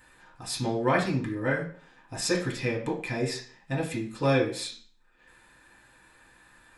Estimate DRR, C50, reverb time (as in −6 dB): −4.5 dB, 8.5 dB, 0.50 s